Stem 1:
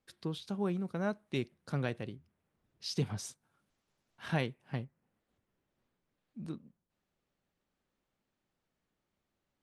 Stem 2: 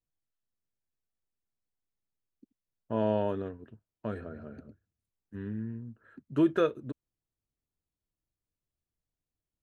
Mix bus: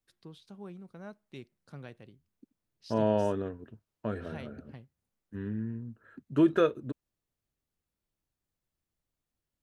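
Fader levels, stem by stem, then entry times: -11.5, +1.5 dB; 0.00, 0.00 s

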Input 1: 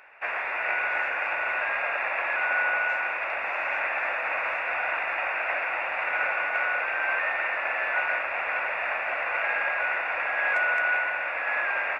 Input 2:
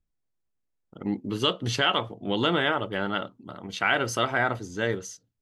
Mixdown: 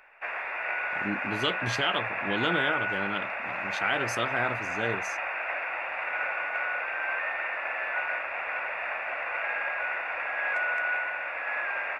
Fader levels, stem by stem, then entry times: -4.0, -4.5 dB; 0.00, 0.00 s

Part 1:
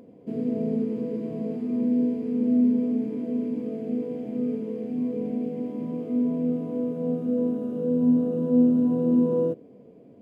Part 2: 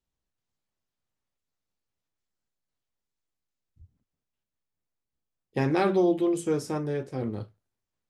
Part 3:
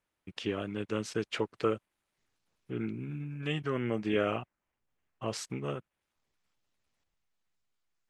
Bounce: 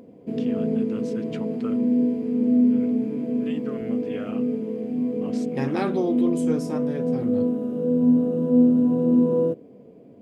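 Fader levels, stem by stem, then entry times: +2.5, -2.0, -7.5 dB; 0.00, 0.00, 0.00 s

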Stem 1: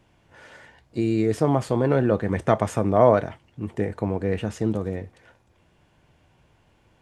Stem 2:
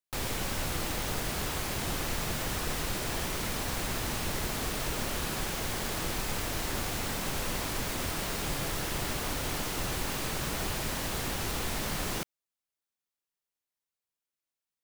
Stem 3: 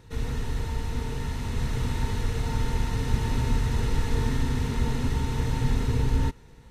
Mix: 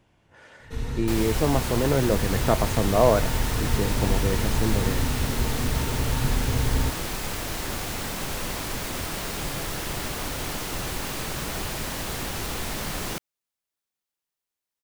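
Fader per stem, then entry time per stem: -2.5, +2.5, -0.5 dB; 0.00, 0.95, 0.60 s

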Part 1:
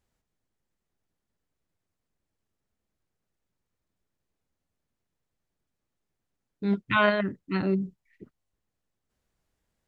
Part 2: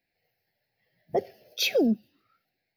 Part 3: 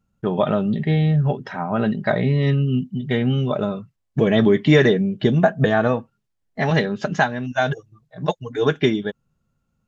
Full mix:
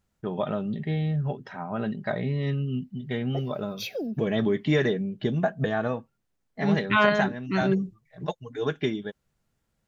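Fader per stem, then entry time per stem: +1.5, -9.0, -9.0 dB; 0.00, 2.20, 0.00 s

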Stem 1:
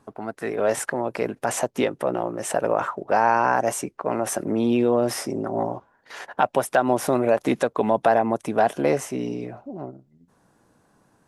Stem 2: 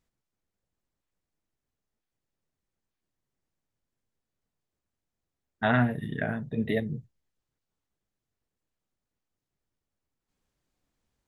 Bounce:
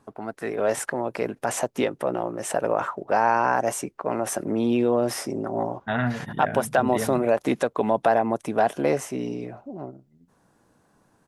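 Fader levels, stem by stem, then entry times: -1.5, -1.5 dB; 0.00, 0.25 s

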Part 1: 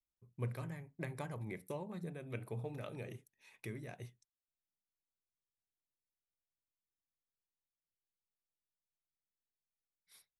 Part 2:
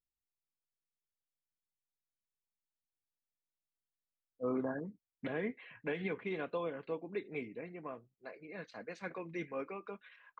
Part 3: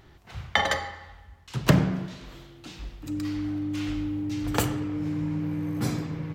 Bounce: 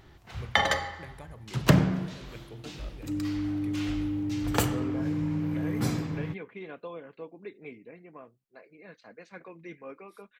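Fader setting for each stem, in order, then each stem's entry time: -3.5, -3.0, -0.5 dB; 0.00, 0.30, 0.00 s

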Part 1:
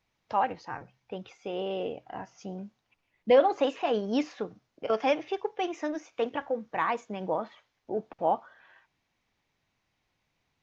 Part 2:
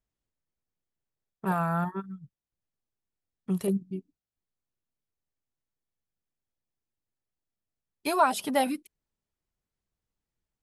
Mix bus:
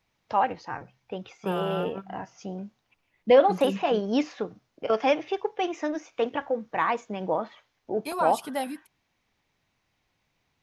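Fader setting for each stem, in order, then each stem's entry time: +3.0, -5.0 dB; 0.00, 0.00 s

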